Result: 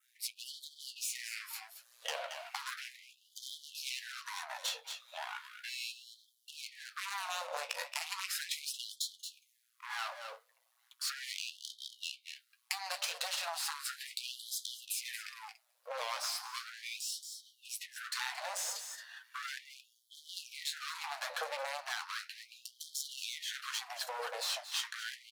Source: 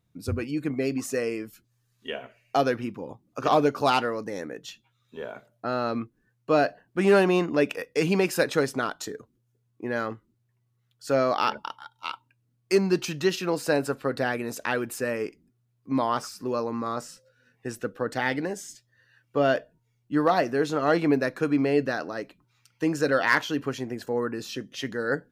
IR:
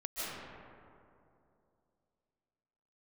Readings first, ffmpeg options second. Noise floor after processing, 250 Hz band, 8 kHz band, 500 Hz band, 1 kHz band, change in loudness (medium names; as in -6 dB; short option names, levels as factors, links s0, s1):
-75 dBFS, under -40 dB, +1.0 dB, -24.5 dB, -14.5 dB, -13.5 dB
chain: -filter_complex "[0:a]aeval=exprs='if(lt(val(0),0),0.251*val(0),val(0))':c=same,acrossover=split=180|960[s0][s1][s2];[s0]acompressor=threshold=0.0282:ratio=4[s3];[s1]acompressor=threshold=0.0158:ratio=4[s4];[s2]acompressor=threshold=0.0158:ratio=4[s5];[s3][s4][s5]amix=inputs=3:normalize=0,adynamicequalizer=threshold=0.00112:dfrequency=4100:dqfactor=2:tfrequency=4100:tqfactor=2:attack=5:release=100:ratio=0.375:range=4:mode=boostabove:tftype=bell,aeval=exprs='clip(val(0),-1,0.00891)':c=same,equalizer=f=11000:w=1.9:g=5.5,asplit=2[s6][s7];[s7]aecho=0:1:225:0.211[s8];[s6][s8]amix=inputs=2:normalize=0,flanger=delay=7.1:depth=9.4:regen=-44:speed=0.46:shape=sinusoidal,acompressor=threshold=0.00251:ratio=4,afftfilt=real='re*gte(b*sr/1024,460*pow(3100/460,0.5+0.5*sin(2*PI*0.36*pts/sr)))':imag='im*gte(b*sr/1024,460*pow(3100/460,0.5+0.5*sin(2*PI*0.36*pts/sr)))':win_size=1024:overlap=0.75,volume=7.5"